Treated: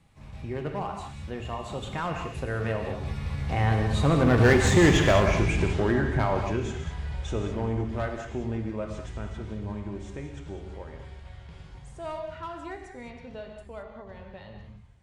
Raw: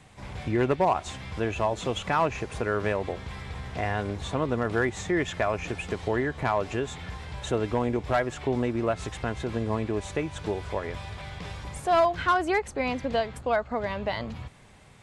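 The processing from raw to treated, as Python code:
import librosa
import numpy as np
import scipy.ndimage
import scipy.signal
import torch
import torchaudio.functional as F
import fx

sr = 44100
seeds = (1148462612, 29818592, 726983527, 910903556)

p1 = fx.doppler_pass(x, sr, speed_mps=24, closest_m=9.7, pass_at_s=4.77)
p2 = fx.low_shelf(p1, sr, hz=170.0, db=11.0)
p3 = fx.hum_notches(p2, sr, base_hz=60, count=2)
p4 = 10.0 ** (-27.0 / 20.0) * (np.abs((p3 / 10.0 ** (-27.0 / 20.0) + 3.0) % 4.0 - 2.0) - 1.0)
p5 = p3 + F.gain(torch.from_numpy(p4), -5.0).numpy()
p6 = fx.rev_gated(p5, sr, seeds[0], gate_ms=240, shape='flat', drr_db=2.5)
y = F.gain(torch.from_numpy(p6), 5.0).numpy()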